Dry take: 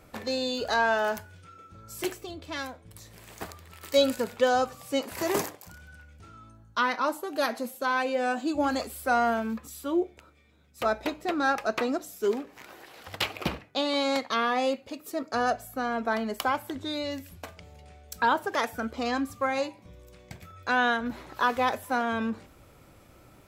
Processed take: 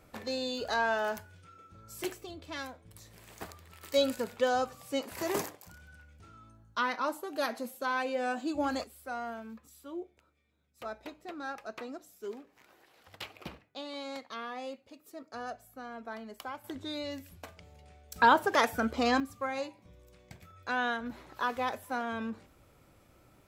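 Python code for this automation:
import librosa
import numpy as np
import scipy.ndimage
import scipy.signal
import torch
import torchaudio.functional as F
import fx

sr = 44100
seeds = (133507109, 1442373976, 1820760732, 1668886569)

y = fx.gain(x, sr, db=fx.steps((0.0, -5.0), (8.84, -14.0), (16.64, -5.5), (18.16, 2.0), (19.2, -7.0)))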